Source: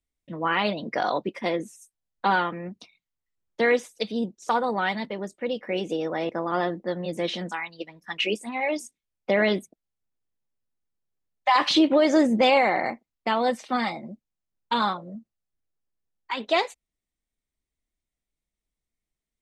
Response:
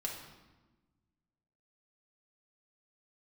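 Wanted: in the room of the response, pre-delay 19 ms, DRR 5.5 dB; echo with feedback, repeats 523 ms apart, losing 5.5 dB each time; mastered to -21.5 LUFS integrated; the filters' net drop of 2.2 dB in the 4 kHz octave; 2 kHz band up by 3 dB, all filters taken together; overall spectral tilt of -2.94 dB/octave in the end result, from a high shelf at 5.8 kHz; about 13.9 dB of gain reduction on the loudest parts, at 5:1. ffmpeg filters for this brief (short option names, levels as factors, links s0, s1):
-filter_complex "[0:a]equalizer=f=2000:t=o:g=4.5,equalizer=f=4000:t=o:g=-6,highshelf=f=5800:g=3.5,acompressor=threshold=0.0282:ratio=5,aecho=1:1:523|1046|1569|2092|2615|3138|3661:0.531|0.281|0.149|0.079|0.0419|0.0222|0.0118,asplit=2[s0][s1];[1:a]atrim=start_sample=2205,adelay=19[s2];[s1][s2]afir=irnorm=-1:irlink=0,volume=0.473[s3];[s0][s3]amix=inputs=2:normalize=0,volume=3.98"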